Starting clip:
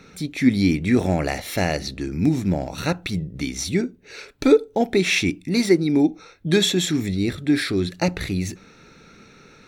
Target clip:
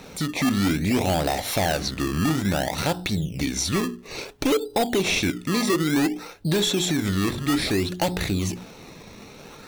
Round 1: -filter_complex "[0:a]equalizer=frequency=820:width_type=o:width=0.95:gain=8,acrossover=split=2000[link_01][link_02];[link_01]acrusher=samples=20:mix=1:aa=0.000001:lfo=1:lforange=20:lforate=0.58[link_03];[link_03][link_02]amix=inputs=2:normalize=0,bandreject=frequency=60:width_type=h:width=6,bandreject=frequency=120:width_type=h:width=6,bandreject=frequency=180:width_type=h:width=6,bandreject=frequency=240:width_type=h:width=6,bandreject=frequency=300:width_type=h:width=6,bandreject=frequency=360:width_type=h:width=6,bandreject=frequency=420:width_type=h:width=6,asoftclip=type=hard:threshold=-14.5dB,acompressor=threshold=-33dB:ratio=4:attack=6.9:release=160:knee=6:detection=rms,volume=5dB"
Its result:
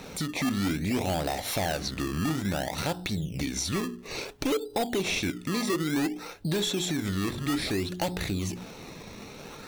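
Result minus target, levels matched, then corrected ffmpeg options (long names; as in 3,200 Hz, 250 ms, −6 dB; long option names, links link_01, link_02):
downward compressor: peak gain reduction +6 dB
-filter_complex "[0:a]equalizer=frequency=820:width_type=o:width=0.95:gain=8,acrossover=split=2000[link_01][link_02];[link_01]acrusher=samples=20:mix=1:aa=0.000001:lfo=1:lforange=20:lforate=0.58[link_03];[link_03][link_02]amix=inputs=2:normalize=0,bandreject=frequency=60:width_type=h:width=6,bandreject=frequency=120:width_type=h:width=6,bandreject=frequency=180:width_type=h:width=6,bandreject=frequency=240:width_type=h:width=6,bandreject=frequency=300:width_type=h:width=6,bandreject=frequency=360:width_type=h:width=6,bandreject=frequency=420:width_type=h:width=6,asoftclip=type=hard:threshold=-14.5dB,acompressor=threshold=-25dB:ratio=4:attack=6.9:release=160:knee=6:detection=rms,volume=5dB"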